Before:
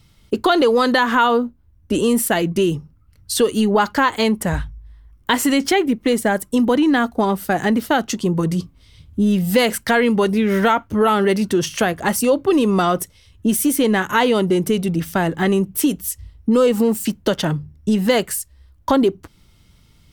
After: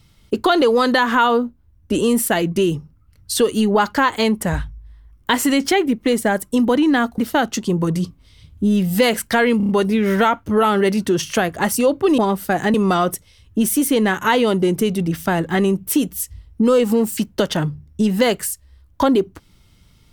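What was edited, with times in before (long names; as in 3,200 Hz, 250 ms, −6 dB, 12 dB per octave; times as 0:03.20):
0:07.18–0:07.74: move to 0:12.62
0:10.13: stutter 0.03 s, 5 plays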